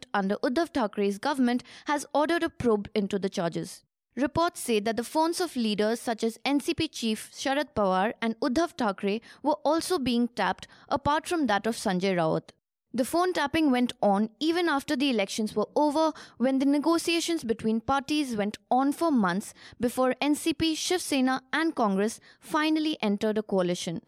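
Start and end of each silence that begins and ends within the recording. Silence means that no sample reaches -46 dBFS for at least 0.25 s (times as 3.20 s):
3.78–4.17 s
12.50–12.94 s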